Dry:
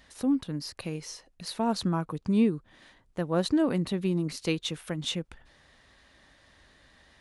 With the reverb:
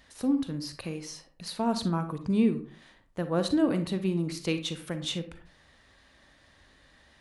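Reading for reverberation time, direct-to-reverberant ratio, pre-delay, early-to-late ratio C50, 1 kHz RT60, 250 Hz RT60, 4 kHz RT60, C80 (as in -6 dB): 0.40 s, 9.0 dB, 36 ms, 11.0 dB, 0.40 s, 0.50 s, 0.25 s, 16.0 dB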